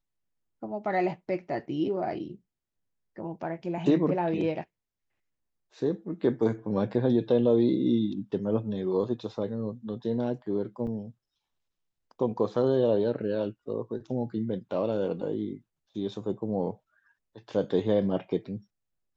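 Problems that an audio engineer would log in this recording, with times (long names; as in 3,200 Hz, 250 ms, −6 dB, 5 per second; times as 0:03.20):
0:10.87: drop-out 2.7 ms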